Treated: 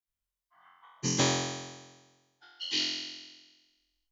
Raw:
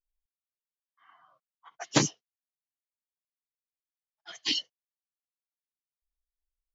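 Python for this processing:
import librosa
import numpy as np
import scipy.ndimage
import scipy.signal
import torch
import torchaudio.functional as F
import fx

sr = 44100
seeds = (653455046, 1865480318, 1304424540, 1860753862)

y = fx.block_reorder(x, sr, ms=143.0, group=3)
y = fx.stretch_vocoder_free(y, sr, factor=0.61)
y = fx.room_flutter(y, sr, wall_m=3.9, rt60_s=1.3)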